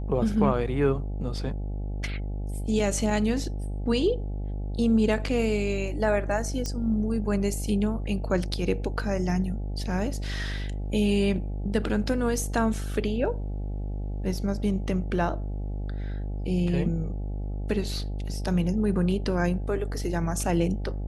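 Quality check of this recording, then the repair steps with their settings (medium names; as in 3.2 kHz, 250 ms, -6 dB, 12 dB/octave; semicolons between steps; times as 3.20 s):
buzz 50 Hz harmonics 17 -31 dBFS
6.66 s: pop -17 dBFS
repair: de-click; de-hum 50 Hz, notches 17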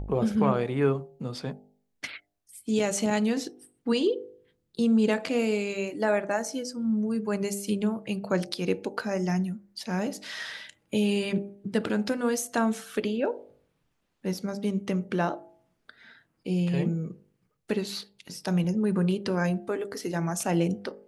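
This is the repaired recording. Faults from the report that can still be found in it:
nothing left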